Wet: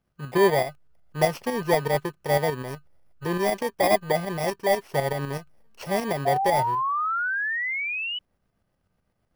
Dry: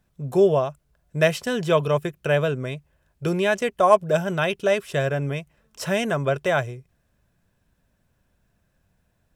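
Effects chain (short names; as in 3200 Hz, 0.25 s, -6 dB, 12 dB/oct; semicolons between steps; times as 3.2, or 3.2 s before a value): FFT order left unsorted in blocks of 32 samples; tremolo saw up 8 Hz, depth 50%; painted sound rise, 6.25–8.19, 690–3000 Hz -28 dBFS; in parallel at -10.5 dB: backlash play -18 dBFS; on the sum: overdrive pedal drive 12 dB, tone 1000 Hz, clips at -3.5 dBFS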